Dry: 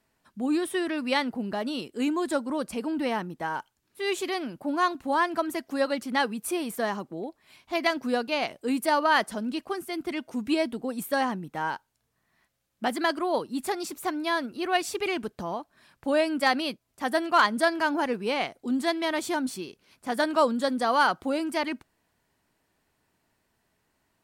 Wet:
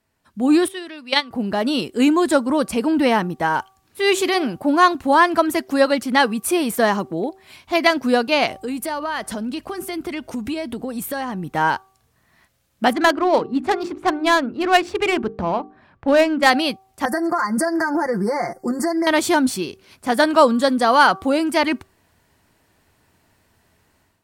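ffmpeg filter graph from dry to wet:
-filter_complex "[0:a]asettb=1/sr,asplit=3[s0][s1][s2];[s0]atrim=end=0.684[s3];[s1]atrim=start=0.68:end=1.31,asetpts=PTS-STARTPTS,afade=t=in:d=0.004:c=qsin,afade=t=out:st=0.626:d=0.004:c=qsin,agate=range=0.178:threshold=0.0631:ratio=16:release=100:detection=peak,highpass=f=170:p=1,equalizer=f=3700:t=o:w=1.2:g=8.5[s4];[s2]atrim=start=1.306[s5];[s3][s4]acrossfade=d=0.004:c1=hsin:c2=qsin[s6];[s6][s5]acrossfade=d=0.004:c1=qsin:c2=hsin,asettb=1/sr,asplit=3[s7][s8][s9];[s7]atrim=end=8.564[s10];[s8]atrim=start=8.56:end=11.52,asetpts=PTS-STARTPTS,afade=t=in:d=0.004:c=qsin,afade=t=out:st=2.956:d=0.004:c=qsin,acompressor=threshold=0.0158:ratio=4:attack=3.2:release=140:knee=1:detection=peak,aeval=exprs='val(0)+0.000355*(sin(2*PI*50*n/s)+sin(2*PI*2*50*n/s)/2+sin(2*PI*3*50*n/s)/3+sin(2*PI*4*50*n/s)/4+sin(2*PI*5*50*n/s)/5)':c=same[s11];[s9]atrim=start=11.516[s12];[s10][s11]acrossfade=d=0.004:c1=hsin:c2=qsin[s13];[s13][s12]acrossfade=d=0.004:c1=qsin:c2=hsin,asettb=1/sr,asplit=3[s14][s15][s16];[s14]atrim=end=12.934[s17];[s15]atrim=start=12.93:end=16.5,asetpts=PTS-STARTPTS,afade=t=in:d=0.004:c=qsin,afade=t=out:st=3.566:d=0.004:c=qsin,bandreject=f=50:t=h:w=6,bandreject=f=100:t=h:w=6,bandreject=f=150:t=h:w=6,bandreject=f=200:t=h:w=6,bandreject=f=250:t=h:w=6,bandreject=f=300:t=h:w=6,bandreject=f=350:t=h:w=6,bandreject=f=400:t=h:w=6,bandreject=f=450:t=h:w=6,adynamicsmooth=sensitivity=4:basefreq=1600[s18];[s16]atrim=start=16.496[s19];[s17][s18]acrossfade=d=0.004:c1=hsin:c2=qsin[s20];[s20][s19]acrossfade=d=0.004:c1=qsin:c2=hsin,asettb=1/sr,asplit=3[s21][s22][s23];[s21]atrim=end=17.054[s24];[s22]atrim=start=17.05:end=19.07,asetpts=PTS-STARTPTS,afade=t=in:d=0.004:c=qsin,afade=t=out:st=2.016:d=0.004:c=qsin,aecho=1:1:5.7:0.86,atrim=end_sample=89082,acompressor=threshold=0.0398:ratio=10:attack=3.2:release=140:knee=1:detection=peak,asuperstop=centerf=3100:order=20:qfactor=1.3[s25];[s23]atrim=start=19.066[s26];[s24][s25]acrossfade=d=0.004:c1=hsin:c2=qsin[s27];[s27][s26]acrossfade=d=0.004:c1=qsin:c2=hsin,equalizer=f=87:w=2.4:g=8,bandreject=f=383.8:t=h:w=4,bandreject=f=767.6:t=h:w=4,bandreject=f=1151.4:t=h:w=4,dynaudnorm=f=250:g=3:m=3.76"

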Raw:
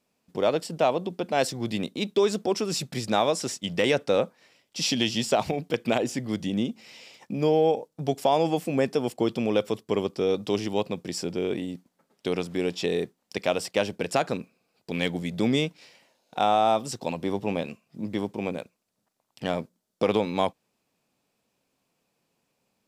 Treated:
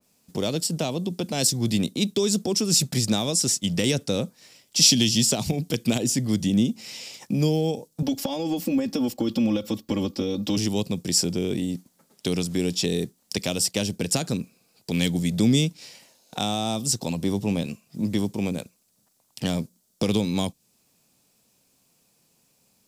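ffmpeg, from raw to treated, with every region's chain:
-filter_complex "[0:a]asettb=1/sr,asplit=3[s0][s1][s2];[s0]atrim=end=8.024[s3];[s1]atrim=start=8.02:end=10.57,asetpts=PTS-STARTPTS,afade=t=in:d=0.004:c=qsin,afade=t=out:st=2.546:d=0.004:c=qsin,equalizer=f=9000:w=1:g=-13.5,aecho=1:1:3.6:0.98,atrim=end_sample=112455,acompressor=threshold=0.0794:ratio=5:attack=3.2:release=140:knee=1:detection=peak[s4];[s2]atrim=start=10.566[s5];[s3][s4]acrossfade=d=0.004:c1=hsin:c2=qsin[s6];[s6][s5]acrossfade=d=0.004:c1=qsin:c2=hsin,bass=f=250:g=6,treble=f=4000:g=13,acrossover=split=320|3000[s7][s8][s9];[s8]acompressor=threshold=0.0126:ratio=3[s10];[s7][s10][s9]amix=inputs=3:normalize=0,adynamicequalizer=threshold=0.00708:dfrequency=2100:dqfactor=0.7:tfrequency=2100:tqfactor=0.7:attack=5:release=100:ratio=0.375:range=1.5:mode=cutabove:tftype=highshelf,volume=1.5"

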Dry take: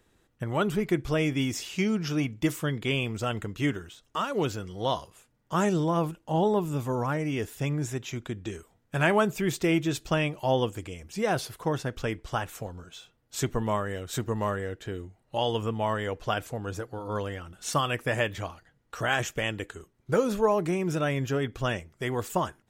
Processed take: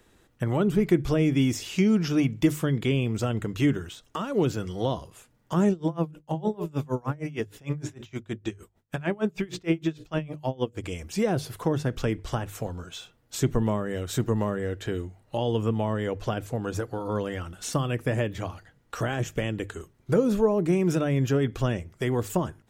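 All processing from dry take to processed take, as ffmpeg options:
-filter_complex "[0:a]asettb=1/sr,asplit=3[s0][s1][s2];[s0]atrim=end=5.714[s3];[s1]atrim=start=5.71:end=10.84,asetpts=PTS-STARTPTS,afade=t=in:d=0.004:c=qsin,afade=t=out:st=5.126:d=0.004:c=qsin,bandreject=f=60:t=h:w=6,bandreject=f=120:t=h:w=6,bandreject=f=180:t=h:w=6,bandreject=f=240:t=h:w=6,bandreject=f=300:t=h:w=6,bandreject=f=360:t=h:w=6,bandreject=f=420:t=h:w=6,bandreject=f=480:t=h:w=6,bandreject=f=540:t=h:w=6,bandreject=f=600:t=h:w=6,acrossover=split=5500[s4][s5];[s5]acompressor=threshold=0.00178:ratio=4:attack=1:release=60[s6];[s4][s6]amix=inputs=2:normalize=0,aeval=exprs='val(0)*pow(10,-29*(0.5-0.5*cos(2*PI*6.5*n/s))/20)':c=same[s7];[s2]atrim=start=10.836[s8];[s3][s7]acrossfade=d=0.004:c1=hsin:c2=qsin[s9];[s9][s8]acrossfade=d=0.004:c1=qsin:c2=hsin,acrossover=split=460[s10][s11];[s11]acompressor=threshold=0.0112:ratio=5[s12];[s10][s12]amix=inputs=2:normalize=0,bandreject=f=50:t=h:w=6,bandreject=f=100:t=h:w=6,bandreject=f=150:t=h:w=6,volume=2"

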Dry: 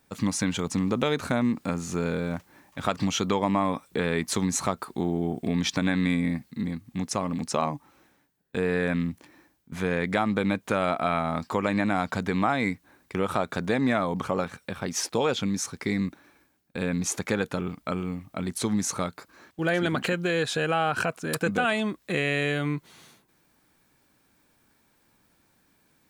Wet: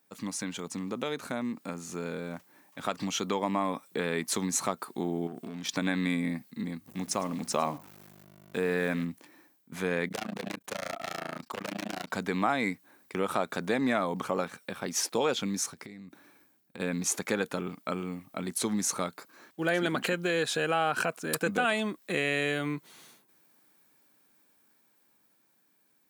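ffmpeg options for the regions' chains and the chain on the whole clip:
-filter_complex "[0:a]asettb=1/sr,asplit=3[s0][s1][s2];[s0]atrim=end=5.274[s3];[s1]atrim=start=5.27:end=5.69,asetpts=PTS-STARTPTS,afade=t=in:d=0.004:c=qsin,afade=t=out:st=0.416:d=0.004:c=qsin,acompressor=threshold=0.0316:ratio=4:attack=3.2:release=140:knee=1:detection=peak,volume=23.7,asoftclip=hard,volume=0.0422[s4];[s2]atrim=start=5.686[s5];[s3][s4]acrossfade=d=0.004:c1=hsin:c2=qsin[s6];[s6][s5]acrossfade=d=0.004:c1=qsin:c2=hsin,asettb=1/sr,asplit=3[s7][s8][s9];[s7]atrim=end=6.864[s10];[s8]atrim=start=6.86:end=9.05,asetpts=PTS-STARTPTS,afade=t=in:d=0.004:c=qsin,afade=t=out:st=2.186:d=0.004:c=qsin,aeval=exprs='val(0)+0.00562*(sin(2*PI*50*n/s)+sin(2*PI*2*50*n/s)/2+sin(2*PI*3*50*n/s)/3+sin(2*PI*4*50*n/s)/4+sin(2*PI*5*50*n/s)/5)':c=same,aeval=exprs='val(0)*gte(abs(val(0)),0.00562)':c=same,aecho=1:1:106:0.0944,atrim=end_sample=96579[s11];[s9]atrim=start=9.046[s12];[s10][s11]acrossfade=d=0.004:c1=hsin:c2=qsin[s13];[s13][s12]acrossfade=d=0.004:c1=qsin:c2=hsin,asettb=1/sr,asplit=3[s14][s15][s16];[s14]atrim=end=10.084[s17];[s15]atrim=start=10.08:end=12.1,asetpts=PTS-STARTPTS,afade=t=in:d=0.004:c=qsin,afade=t=out:st=2.016:d=0.004:c=qsin,aeval=exprs='0.0668*(abs(mod(val(0)/0.0668+3,4)-2)-1)':c=same,tremolo=f=28:d=1[s18];[s16]atrim=start=12.096[s19];[s17][s18]acrossfade=d=0.004:c1=hsin:c2=qsin[s20];[s20][s19]acrossfade=d=0.004:c1=qsin:c2=hsin,asettb=1/sr,asplit=3[s21][s22][s23];[s21]atrim=end=15.734[s24];[s22]atrim=start=15.73:end=16.8,asetpts=PTS-STARTPTS,afade=t=in:d=0.004:c=qsin,afade=t=out:st=1.066:d=0.004:c=qsin,lowshelf=f=160:g=9,acompressor=threshold=0.0158:ratio=20:attack=3.2:release=140:knee=1:detection=peak[s25];[s23]atrim=start=16.796[s26];[s24][s25]acrossfade=d=0.004:c1=hsin:c2=qsin[s27];[s27][s26]acrossfade=d=0.004:c1=qsin:c2=hsin,highpass=190,highshelf=f=10000:g=8.5,dynaudnorm=f=620:g=9:m=2,volume=0.398"

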